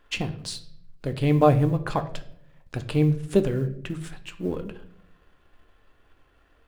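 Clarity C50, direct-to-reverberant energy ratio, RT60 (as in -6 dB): 14.0 dB, 8.0 dB, 0.70 s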